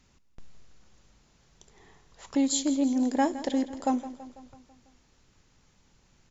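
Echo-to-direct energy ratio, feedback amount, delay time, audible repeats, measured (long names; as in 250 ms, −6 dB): −13.0 dB, 58%, 165 ms, 5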